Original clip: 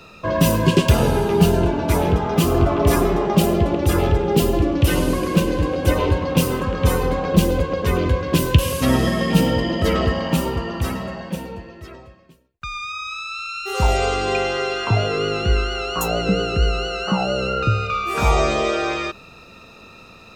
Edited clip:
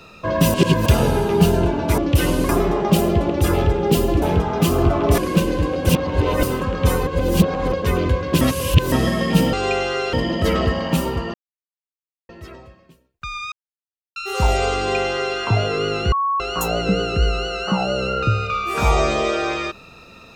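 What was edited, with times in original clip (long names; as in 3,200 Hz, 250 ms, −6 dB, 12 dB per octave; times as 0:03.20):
0:00.54–0:00.86: reverse
0:01.98–0:02.94: swap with 0:04.67–0:05.18
0:05.89–0:06.43: reverse
0:07.07–0:07.72: reverse
0:08.41–0:08.92: reverse
0:10.74–0:11.69: silence
0:12.92–0:13.56: silence
0:14.17–0:14.77: duplicate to 0:09.53
0:15.52–0:15.80: beep over 1,110 Hz −17 dBFS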